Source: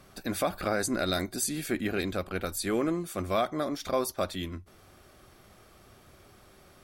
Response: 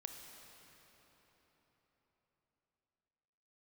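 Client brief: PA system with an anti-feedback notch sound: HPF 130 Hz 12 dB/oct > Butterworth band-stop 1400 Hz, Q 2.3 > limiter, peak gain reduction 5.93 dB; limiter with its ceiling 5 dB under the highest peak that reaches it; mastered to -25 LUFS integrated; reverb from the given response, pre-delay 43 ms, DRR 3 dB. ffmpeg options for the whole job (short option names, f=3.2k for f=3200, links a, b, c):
-filter_complex "[0:a]alimiter=limit=-21.5dB:level=0:latency=1,asplit=2[a][b];[1:a]atrim=start_sample=2205,adelay=43[c];[b][c]afir=irnorm=-1:irlink=0,volume=0.5dB[d];[a][d]amix=inputs=2:normalize=0,highpass=130,asuperstop=centerf=1400:order=8:qfactor=2.3,volume=8.5dB,alimiter=limit=-14.5dB:level=0:latency=1"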